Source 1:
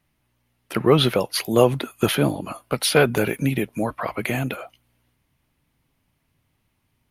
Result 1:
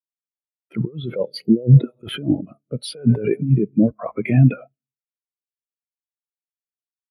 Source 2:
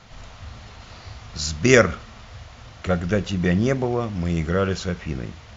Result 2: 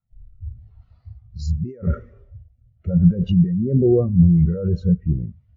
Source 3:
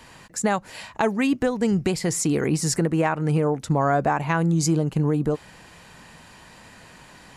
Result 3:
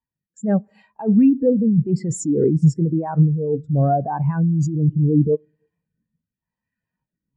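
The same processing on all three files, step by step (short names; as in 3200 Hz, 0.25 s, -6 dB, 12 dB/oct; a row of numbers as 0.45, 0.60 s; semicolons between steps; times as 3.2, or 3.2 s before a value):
Schroeder reverb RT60 1.5 s, combs from 29 ms, DRR 18 dB; rotary speaker horn 0.85 Hz; negative-ratio compressor -26 dBFS, ratio -1; sample leveller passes 1; spectral expander 2.5:1; match loudness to -19 LUFS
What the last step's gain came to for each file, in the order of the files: +4.0, +10.0, +4.5 dB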